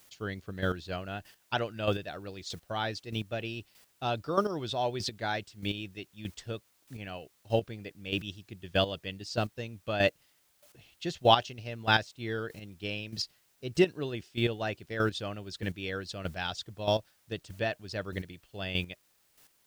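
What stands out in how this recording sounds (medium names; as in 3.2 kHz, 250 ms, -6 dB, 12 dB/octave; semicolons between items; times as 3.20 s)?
a quantiser's noise floor 10-bit, dither triangular; chopped level 1.6 Hz, depth 65%, duty 15%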